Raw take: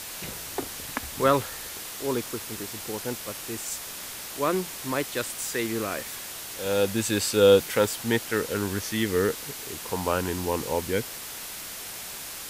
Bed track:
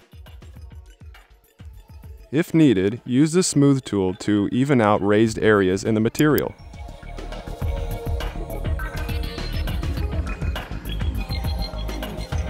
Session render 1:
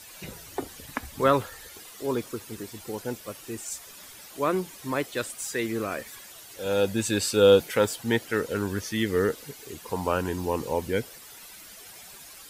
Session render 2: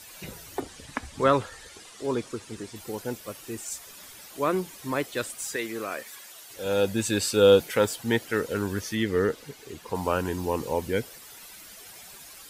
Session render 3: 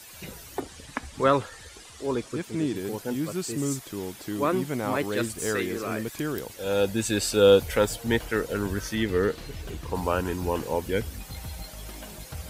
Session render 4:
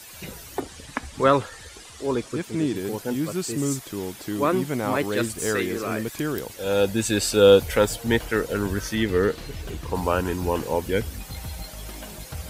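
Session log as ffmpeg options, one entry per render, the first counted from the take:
-af "afftdn=nr=12:nf=-38"
-filter_complex "[0:a]asettb=1/sr,asplit=3[s0][s1][s2];[s0]atrim=end=0.604[s3];[s1]atrim=start=0.6:end=2.76,asetpts=PTS-STARTPTS,afade=t=in:d=0.004:c=qsin,afade=t=out:st=2.156:d=0.004:c=qsin,lowpass=f=9400:w=0.5412,lowpass=f=9400:w=1.3066[s4];[s2]atrim=start=2.756[s5];[s3][s4]acrossfade=d=0.004:c1=hsin:c2=qsin[s6];[s6][s5]acrossfade=d=0.004:c1=qsin:c2=hsin,asettb=1/sr,asplit=3[s7][s8][s9];[s7]atrim=end=5.564[s10];[s8]atrim=start=5.56:end=6.5,asetpts=PTS-STARTPTS,afade=t=in:d=0.004:c=qsin,afade=t=out:st=0.936:d=0.004:c=qsin,highpass=f=450:p=1[s11];[s9]atrim=start=6.496[s12];[s10][s11]acrossfade=d=0.004:c1=hsin:c2=qsin[s13];[s13][s12]acrossfade=d=0.004:c1=qsin:c2=hsin,asettb=1/sr,asplit=3[s14][s15][s16];[s14]atrim=end=8.954[s17];[s15]atrim=start=8.95:end=9.95,asetpts=PTS-STARTPTS,afade=t=in:d=0.004:c=qsin,afade=t=out:st=0.996:d=0.004:c=qsin,highshelf=f=7300:g=-9.5[s18];[s16]atrim=start=9.946[s19];[s17][s18]acrossfade=d=0.004:c1=hsin:c2=qsin[s20];[s20][s19]acrossfade=d=0.004:c1=qsin:c2=hsin"
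-filter_complex "[1:a]volume=0.224[s0];[0:a][s0]amix=inputs=2:normalize=0"
-af "volume=1.41"

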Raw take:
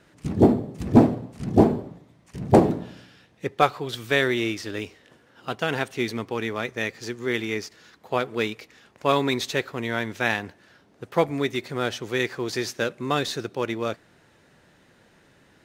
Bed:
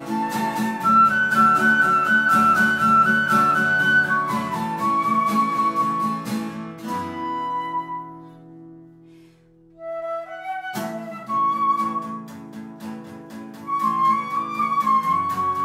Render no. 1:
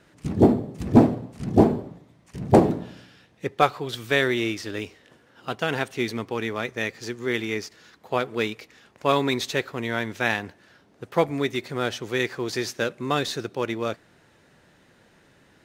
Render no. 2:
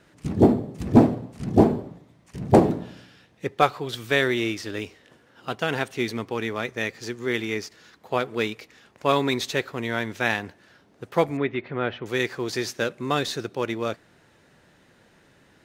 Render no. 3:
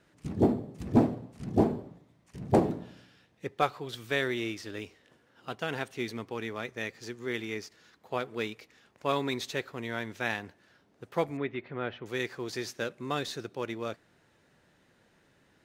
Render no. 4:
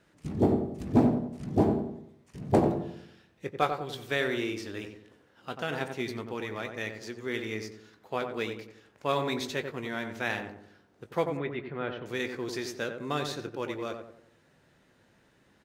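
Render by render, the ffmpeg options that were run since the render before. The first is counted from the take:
-af anull
-filter_complex "[0:a]asettb=1/sr,asplit=3[s0][s1][s2];[s0]atrim=end=11.374[s3];[s1]atrim=start=11.37:end=12.06,asetpts=PTS-STARTPTS,afade=t=in:d=0.004:c=qsin,afade=t=out:st=0.686:d=0.004:c=qsin,lowpass=f=2800:w=0.5412,lowpass=f=2800:w=1.3066[s4];[s2]atrim=start=12.056[s5];[s3][s4]acrossfade=d=0.004:c1=hsin:c2=qsin[s6];[s6][s5]acrossfade=d=0.004:c1=qsin:c2=hsin"
-af "volume=0.398"
-filter_complex "[0:a]asplit=2[s0][s1];[s1]adelay=20,volume=0.251[s2];[s0][s2]amix=inputs=2:normalize=0,asplit=2[s3][s4];[s4]adelay=91,lowpass=f=1200:p=1,volume=0.562,asplit=2[s5][s6];[s6]adelay=91,lowpass=f=1200:p=1,volume=0.46,asplit=2[s7][s8];[s8]adelay=91,lowpass=f=1200:p=1,volume=0.46,asplit=2[s9][s10];[s10]adelay=91,lowpass=f=1200:p=1,volume=0.46,asplit=2[s11][s12];[s12]adelay=91,lowpass=f=1200:p=1,volume=0.46,asplit=2[s13][s14];[s14]adelay=91,lowpass=f=1200:p=1,volume=0.46[s15];[s3][s5][s7][s9][s11][s13][s15]amix=inputs=7:normalize=0"

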